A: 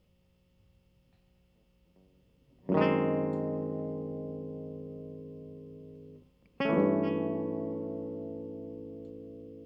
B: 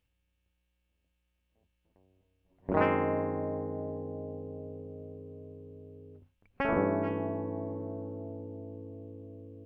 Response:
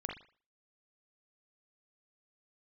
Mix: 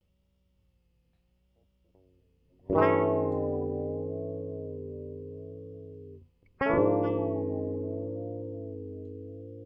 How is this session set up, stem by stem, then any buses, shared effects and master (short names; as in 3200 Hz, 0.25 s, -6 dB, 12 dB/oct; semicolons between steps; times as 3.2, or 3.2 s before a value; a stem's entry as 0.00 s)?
-6.5 dB, 0.00 s, no send, dry
+3.0 dB, 0.4 ms, polarity flipped, no send, spectral gate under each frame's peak -15 dB strong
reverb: off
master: vibrato 0.75 Hz 83 cents